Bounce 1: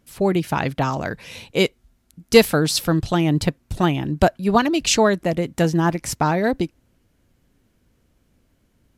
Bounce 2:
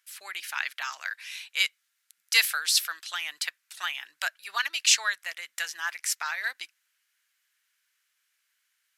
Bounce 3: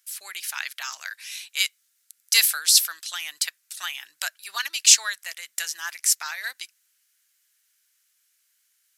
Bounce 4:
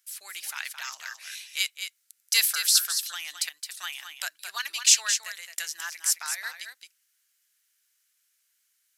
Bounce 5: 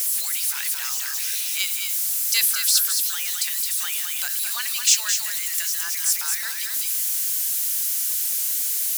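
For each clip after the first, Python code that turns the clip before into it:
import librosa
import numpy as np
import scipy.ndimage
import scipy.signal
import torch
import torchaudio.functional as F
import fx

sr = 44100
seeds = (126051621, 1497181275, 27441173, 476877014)

y1 = scipy.signal.sosfilt(scipy.signal.cheby1(3, 1.0, 1600.0, 'highpass', fs=sr, output='sos'), x)
y2 = fx.bass_treble(y1, sr, bass_db=4, treble_db=12)
y2 = y2 * 10.0 ** (-2.0 / 20.0)
y3 = y2 + 10.0 ** (-8.0 / 20.0) * np.pad(y2, (int(217 * sr / 1000.0), 0))[:len(y2)]
y3 = y3 * 10.0 ** (-4.0 / 20.0)
y4 = y3 + 0.5 * 10.0 ** (-20.0 / 20.0) * np.diff(np.sign(y3), prepend=np.sign(y3[:1]))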